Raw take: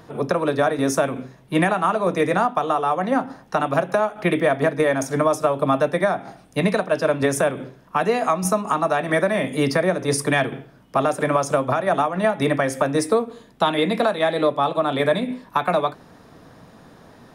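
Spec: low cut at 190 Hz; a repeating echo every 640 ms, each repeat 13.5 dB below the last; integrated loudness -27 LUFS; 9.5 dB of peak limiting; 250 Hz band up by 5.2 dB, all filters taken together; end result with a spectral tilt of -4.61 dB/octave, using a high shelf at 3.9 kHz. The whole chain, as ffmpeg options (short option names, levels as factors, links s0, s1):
-af "highpass=190,equalizer=f=250:t=o:g=8,highshelf=f=3900:g=6.5,alimiter=limit=0.211:level=0:latency=1,aecho=1:1:640|1280:0.211|0.0444,volume=0.631"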